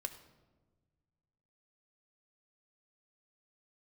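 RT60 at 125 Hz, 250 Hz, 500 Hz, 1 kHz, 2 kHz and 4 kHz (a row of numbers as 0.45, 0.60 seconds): 2.4, 1.9, 1.5, 1.2, 0.85, 0.75 seconds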